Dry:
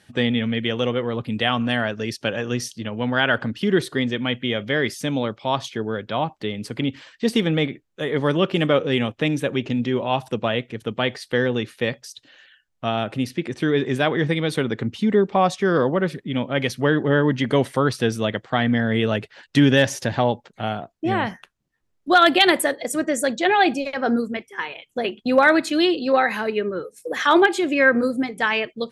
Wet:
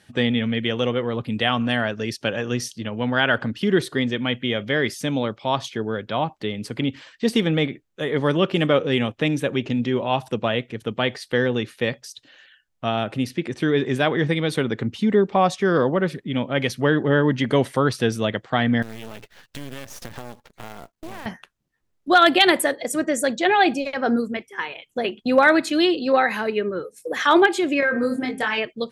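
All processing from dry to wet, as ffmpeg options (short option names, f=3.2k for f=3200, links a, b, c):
-filter_complex "[0:a]asettb=1/sr,asplit=3[a][b][c];[a]atrim=end=18.824[d];[b]atrim=start=18.82:end=21.26,asetpts=PTS-STARTPTS,afade=t=in:d=0.004:c=qsin,afade=t=out:st=2.436:d=0.004:c=qsin,acompressor=threshold=-30dB:ratio=6:attack=3.2:release=140:knee=1:detection=peak,aeval=exprs='max(val(0),0)':c=same,acrusher=bits=3:mode=log:mix=0:aa=0.000001[e];[c]atrim=start=21.256[f];[d][e]acrossfade=d=0.004:c1=hsin:c2=qsin[g];[g][f]acrossfade=d=0.004:c1=qsin:c2=hsin,asettb=1/sr,asplit=3[h][i][j];[h]atrim=end=27.804[k];[i]atrim=start=27.8:end=28.58,asetpts=PTS-STARTPTS,afade=t=in:d=0.004:c=qsin,afade=t=out:st=0.776:d=0.004:c=qsin,bandreject=f=131.3:t=h:w=4,bandreject=f=262.6:t=h:w=4,bandreject=f=393.9:t=h:w=4,bandreject=f=525.2:t=h:w=4,bandreject=f=656.5:t=h:w=4,bandreject=f=787.8:t=h:w=4,bandreject=f=919.1:t=h:w=4,bandreject=f=1.0504k:t=h:w=4,bandreject=f=1.1817k:t=h:w=4,bandreject=f=1.313k:t=h:w=4,bandreject=f=1.4443k:t=h:w=4,bandreject=f=1.5756k:t=h:w=4,bandreject=f=1.7069k:t=h:w=4,bandreject=f=1.8382k:t=h:w=4,bandreject=f=1.9695k:t=h:w=4,bandreject=f=2.1008k:t=h:w=4,bandreject=f=2.2321k:t=h:w=4,bandreject=f=2.3634k:t=h:w=4,bandreject=f=2.4947k:t=h:w=4,bandreject=f=2.626k:t=h:w=4,bandreject=f=2.7573k:t=h:w=4,bandreject=f=2.8886k:t=h:w=4,bandreject=f=3.0199k:t=h:w=4,bandreject=f=3.1512k:t=h:w=4,bandreject=f=3.2825k:t=h:w=4,bandreject=f=3.4138k:t=h:w=4,acompressor=threshold=-19dB:ratio=6:attack=3.2:release=140:knee=1:detection=peak,asplit=2[l][m];[m]adelay=24,volume=-3.5dB[n];[l][n]amix=inputs=2:normalize=0,atrim=end_sample=34398[o];[j]atrim=start=28.576[p];[k][o]acrossfade=d=0.004:c1=hsin:c2=qsin[q];[q][p]acrossfade=d=0.004:c1=qsin:c2=hsin"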